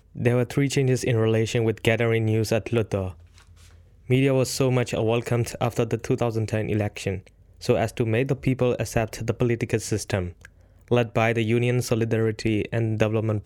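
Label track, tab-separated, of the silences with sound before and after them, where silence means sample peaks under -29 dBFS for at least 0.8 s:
3.100000	4.100000	silence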